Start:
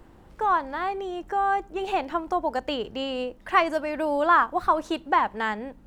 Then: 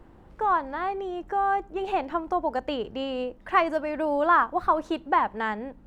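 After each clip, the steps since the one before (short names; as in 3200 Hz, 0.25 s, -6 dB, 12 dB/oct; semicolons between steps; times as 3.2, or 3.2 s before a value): high shelf 3200 Hz -9.5 dB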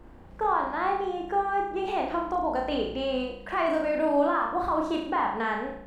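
limiter -20 dBFS, peak gain reduction 10 dB; on a send: flutter echo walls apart 6 m, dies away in 0.65 s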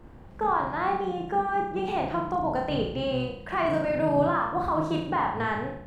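octaver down 1 oct, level -1 dB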